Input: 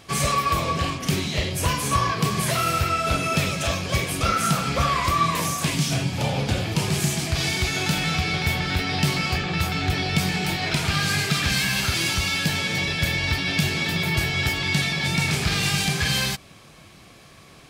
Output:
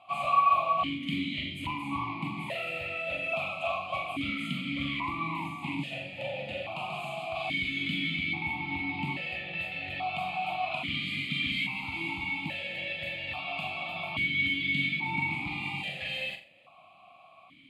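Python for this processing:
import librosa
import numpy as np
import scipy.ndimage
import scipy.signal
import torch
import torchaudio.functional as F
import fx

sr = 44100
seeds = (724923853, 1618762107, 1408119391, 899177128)

y = fx.fixed_phaser(x, sr, hz=1600.0, stages=6)
y = fx.room_flutter(y, sr, wall_m=7.3, rt60_s=0.35)
y = fx.vowel_held(y, sr, hz=1.2)
y = F.gain(torch.from_numpy(y), 6.0).numpy()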